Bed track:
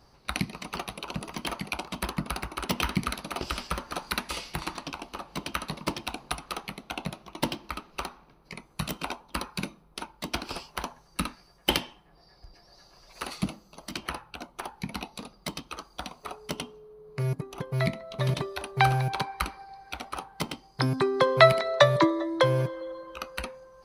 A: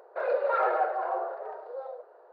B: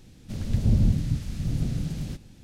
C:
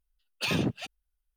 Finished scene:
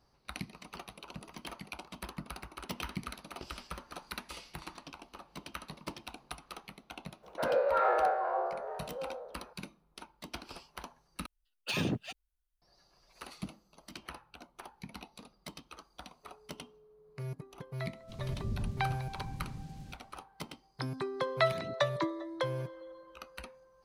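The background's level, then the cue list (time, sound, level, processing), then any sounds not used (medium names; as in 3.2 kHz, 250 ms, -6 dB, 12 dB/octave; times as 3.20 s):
bed track -11.5 dB
7.22 s: add A -4 dB, fades 0.02 s + spectral sustain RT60 0.74 s
11.26 s: replace with C -4.5 dB
17.79 s: add B -15.5 dB
21.03 s: add C -17.5 dB + phase shifter stages 12, 1.7 Hz, lowest notch 760–1900 Hz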